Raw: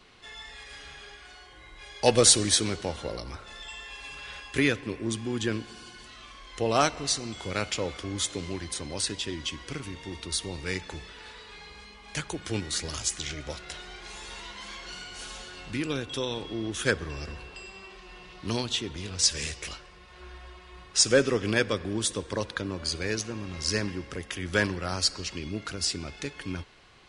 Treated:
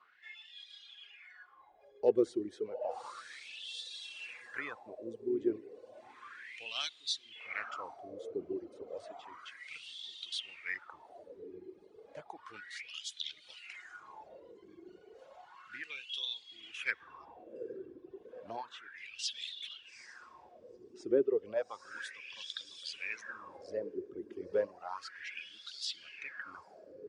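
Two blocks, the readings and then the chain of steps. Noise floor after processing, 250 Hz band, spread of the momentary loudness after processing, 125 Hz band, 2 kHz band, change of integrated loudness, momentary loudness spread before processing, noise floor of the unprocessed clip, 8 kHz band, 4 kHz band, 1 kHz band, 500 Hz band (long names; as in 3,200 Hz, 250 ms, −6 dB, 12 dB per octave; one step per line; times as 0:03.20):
−61 dBFS, −11.0 dB, 19 LU, −28.0 dB, −9.5 dB, −11.0 dB, 20 LU, −50 dBFS, −23.5 dB, −11.0 dB, −11.5 dB, −6.5 dB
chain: feedback delay with all-pass diffusion 858 ms, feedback 63%, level −8.5 dB
LFO wah 0.32 Hz 360–3,600 Hz, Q 6.1
reverb reduction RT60 1.6 s
level +2.5 dB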